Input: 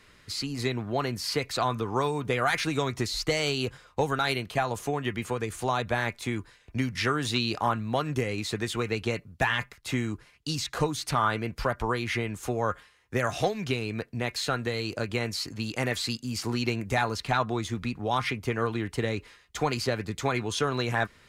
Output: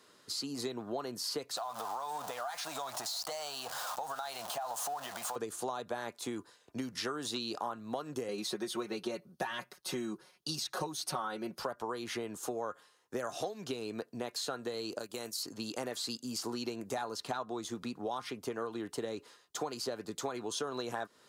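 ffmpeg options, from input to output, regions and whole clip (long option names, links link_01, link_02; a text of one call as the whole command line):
ffmpeg -i in.wav -filter_complex "[0:a]asettb=1/sr,asplit=3[link_01][link_02][link_03];[link_01]atrim=end=1.574[link_04];[link_02]atrim=start=1.57:end=5.36,asetpts=PTS-STARTPTS,afade=type=in:duration=0.004:curve=qsin,afade=type=out:start_time=3.786:duration=0.004:curve=qsin,aeval=exprs='val(0)+0.5*0.0299*sgn(val(0))':channel_layout=same,lowshelf=frequency=530:width_type=q:width=3:gain=-10.5,acompressor=threshold=-31dB:ratio=6:attack=3.2:release=140:knee=1:detection=peak[link_05];[link_03]atrim=start=5.356[link_06];[link_04][link_05]acrossfade=duration=0.004:curve1=hsin:curve2=qsin[link_07];[link_07][link_06]acrossfade=duration=0.004:curve1=qsin:curve2=hsin,asettb=1/sr,asplit=3[link_08][link_09][link_10];[link_08]atrim=end=8.284[link_11];[link_09]atrim=start=8.28:end=11.59,asetpts=PTS-STARTPTS,afade=type=in:duration=0.004:curve=qsin,afade=type=out:start_time=3.306:duration=0.004:curve=qsin,bandreject=frequency=7400:width=5.4,aecho=1:1:5.4:0.86,atrim=end_sample=145971[link_12];[link_10]atrim=start=11.586[link_13];[link_11][link_12]acrossfade=duration=0.004:curve1=hsin:curve2=qsin[link_14];[link_14][link_13]acrossfade=duration=0.004:curve1=qsin:curve2=hsin,asettb=1/sr,asplit=3[link_15][link_16][link_17];[link_15]atrim=end=14.994[link_18];[link_16]atrim=start=14.99:end=15.43,asetpts=PTS-STARTPTS,afade=type=in:duration=0.004:curve=qsin,afade=type=out:start_time=0.436:duration=0.004:curve=qsin,agate=range=-12dB:threshold=-33dB:ratio=16:release=100:detection=peak,aemphasis=mode=production:type=75kf,acompressor=threshold=-33dB:ratio=3:attack=3.2:release=140:knee=1:detection=peak[link_19];[link_17]atrim=start=15.426[link_20];[link_18][link_19]acrossfade=duration=0.004:curve1=hsin:curve2=qsin[link_21];[link_21][link_20]acrossfade=duration=0.004:curve1=qsin:curve2=hsin,highpass=300,equalizer=frequency=2200:width_type=o:width=0.87:gain=-14,acompressor=threshold=-34dB:ratio=5" out.wav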